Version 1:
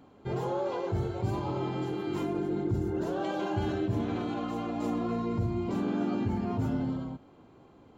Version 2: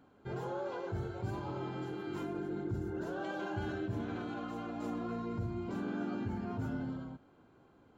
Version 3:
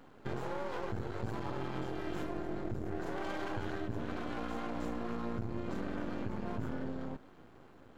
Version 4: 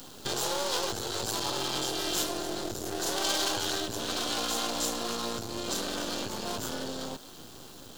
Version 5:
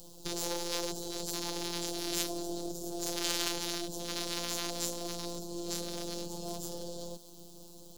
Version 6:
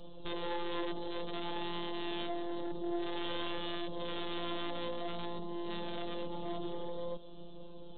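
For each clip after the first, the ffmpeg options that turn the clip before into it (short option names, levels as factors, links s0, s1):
-af "equalizer=f=1500:w=5.5:g=9.5,volume=0.422"
-af "acompressor=threshold=0.00891:ratio=6,aeval=exprs='max(val(0),0)':c=same,volume=3.16"
-filter_complex "[0:a]acrossover=split=360|900[s0][s1][s2];[s0]acompressor=threshold=0.00398:ratio=4[s3];[s3][s1][s2]amix=inputs=3:normalize=0,aexciter=amount=12.8:drive=2.9:freq=3200,volume=2.37"
-filter_complex "[0:a]afftfilt=real='hypot(re,im)*cos(PI*b)':imag='0':win_size=1024:overlap=0.75,acrossover=split=310|820|3900[s0][s1][s2][s3];[s2]acrusher=bits=4:mix=0:aa=0.5[s4];[s0][s1][s4][s3]amix=inputs=4:normalize=0"
-af "aresample=8000,asoftclip=type=tanh:threshold=0.0126,aresample=44100,flanger=delay=1.7:depth=3.1:regen=61:speed=0.27:shape=sinusoidal,volume=2.82"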